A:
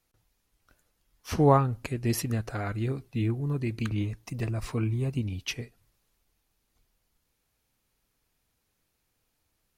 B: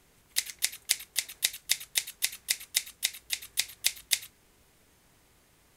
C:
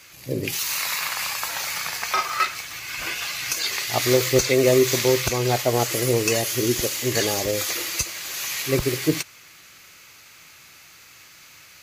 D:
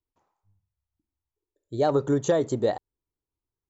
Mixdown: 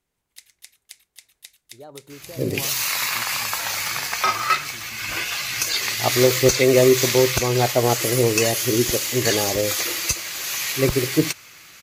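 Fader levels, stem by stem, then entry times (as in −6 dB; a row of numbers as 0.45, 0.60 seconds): −17.5, −16.0, +2.5, −19.0 decibels; 1.10, 0.00, 2.10, 0.00 seconds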